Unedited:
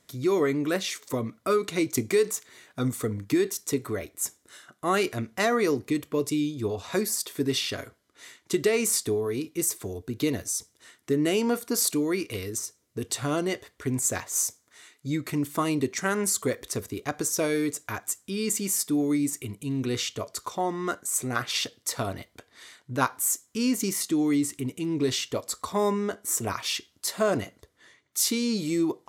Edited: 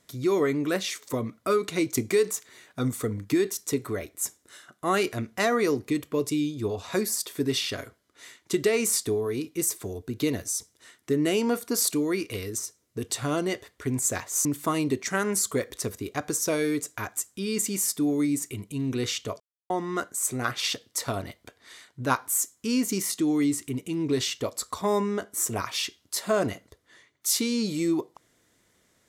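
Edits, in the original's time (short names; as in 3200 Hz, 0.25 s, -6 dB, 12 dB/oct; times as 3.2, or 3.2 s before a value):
14.45–15.36 cut
20.31–20.61 mute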